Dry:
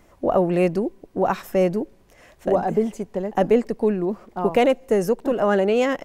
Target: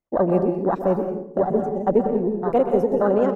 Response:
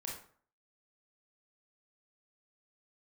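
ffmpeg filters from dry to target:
-filter_complex "[0:a]afwtdn=0.0708,agate=range=-17dB:threshold=-53dB:ratio=16:detection=peak,atempo=1.8,asplit=2[a][b];[1:a]atrim=start_sample=2205,asetrate=33516,aresample=44100,adelay=126[c];[b][c]afir=irnorm=-1:irlink=0,volume=-6dB[d];[a][d]amix=inputs=2:normalize=0"

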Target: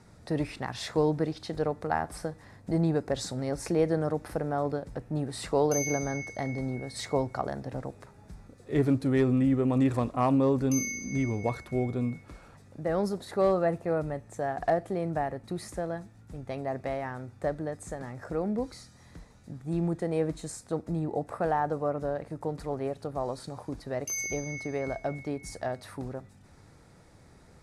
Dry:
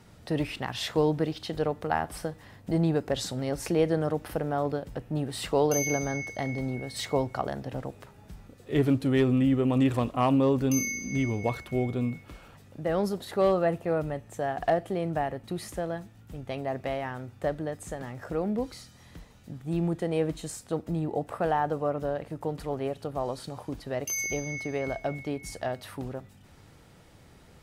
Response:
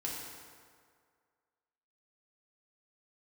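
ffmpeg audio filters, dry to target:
-af "lowpass=f=11k:w=0.5412,lowpass=f=11k:w=1.3066,equalizer=f=3k:t=o:w=0.41:g=-11,volume=-1dB"

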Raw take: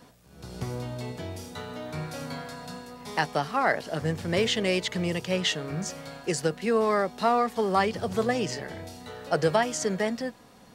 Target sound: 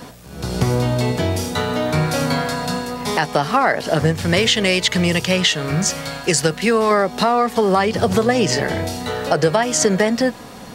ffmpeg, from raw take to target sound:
-filter_complex "[0:a]asettb=1/sr,asplit=3[a][b][c];[a]atrim=end=4.124[d];[b]atrim=start=4.12:end=6.91,asetpts=PTS-STARTPTS,afade=t=in:d=0.004:c=qsin,afade=t=out:st=2.786:d=0.004:c=qsin,equalizer=f=380:w=0.39:g=-6.5[e];[c]atrim=start=6.906[f];[d][e]acrossfade=d=0.004:c1=hsin:c2=qsin[g];[g][f]acrossfade=d=0.004:c1=qsin:c2=hsin,acompressor=threshold=-29dB:ratio=6,alimiter=level_in=20dB:limit=-1dB:release=50:level=0:latency=1,volume=-3dB"

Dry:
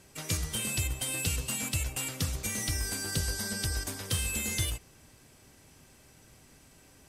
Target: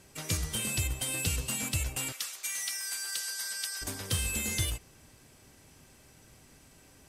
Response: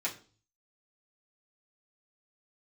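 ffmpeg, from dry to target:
-filter_complex "[0:a]asettb=1/sr,asplit=3[a][b][c];[a]atrim=end=2.124[d];[b]atrim=start=2.12:end=3.82,asetpts=PTS-STARTPTS,afade=t=in:d=0.004:c=qsin,afade=t=out:st=1.696:d=0.004:c=qsin,highpass=1.3k[e];[c]atrim=start=3.816[f];[d][e]acrossfade=d=0.004:c1=hsin:c2=qsin[g];[g][f]acrossfade=d=0.004:c1=qsin:c2=hsin"

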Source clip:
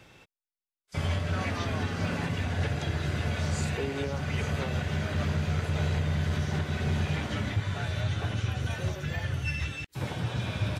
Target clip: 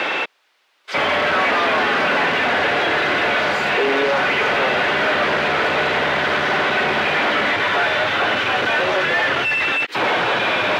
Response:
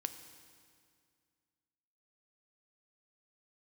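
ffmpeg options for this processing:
-filter_complex "[0:a]asplit=2[a][b];[b]highpass=f=720:p=1,volume=42dB,asoftclip=type=tanh:threshold=-17dB[c];[a][c]amix=inputs=2:normalize=0,lowpass=f=5.4k:p=1,volume=-6dB,acrossover=split=250 4200:gain=0.0794 1 0.112[d][e][f];[d][e][f]amix=inputs=3:normalize=0,acrossover=split=3400[g][h];[h]acompressor=threshold=-42dB:ratio=4:attack=1:release=60[i];[g][i]amix=inputs=2:normalize=0,volume=7.5dB"

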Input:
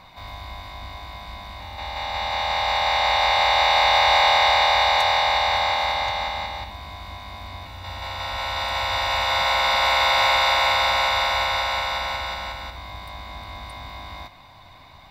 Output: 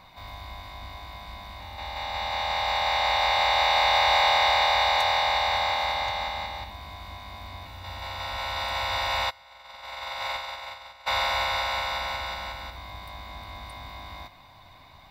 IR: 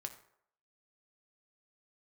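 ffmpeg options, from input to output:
-filter_complex "[0:a]asplit=3[a][b][c];[a]afade=t=out:st=9.29:d=0.02[d];[b]agate=range=-27dB:threshold=-16dB:ratio=16:detection=peak,afade=t=in:st=9.29:d=0.02,afade=t=out:st=11.06:d=0.02[e];[c]afade=t=in:st=11.06:d=0.02[f];[d][e][f]amix=inputs=3:normalize=0,asplit=2[g][h];[h]aderivative[i];[1:a]atrim=start_sample=2205,highshelf=f=12k:g=9[j];[i][j]afir=irnorm=-1:irlink=0,volume=-9dB[k];[g][k]amix=inputs=2:normalize=0,volume=-4dB"

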